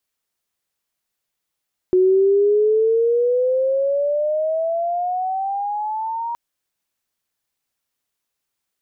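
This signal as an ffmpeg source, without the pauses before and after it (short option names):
-f lavfi -i "aevalsrc='pow(10,(-11-11.5*t/4.42)/20)*sin(2*PI*365*4.42/(16.5*log(2)/12)*(exp(16.5*log(2)/12*t/4.42)-1))':d=4.42:s=44100"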